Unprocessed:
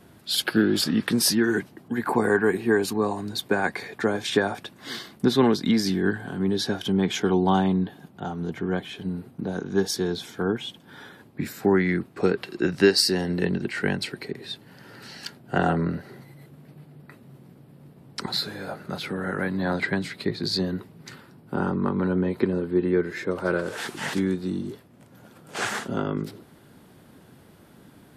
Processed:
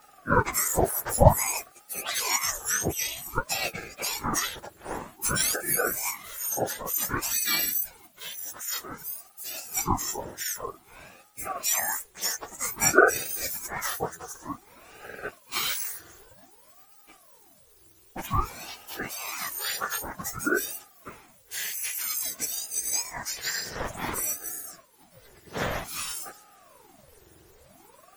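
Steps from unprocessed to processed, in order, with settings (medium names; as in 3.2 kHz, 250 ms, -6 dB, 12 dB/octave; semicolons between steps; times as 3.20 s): spectrum inverted on a logarithmic axis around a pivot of 1.6 kHz; ring modulator with a swept carrier 580 Hz, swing 80%, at 0.53 Hz; trim +2.5 dB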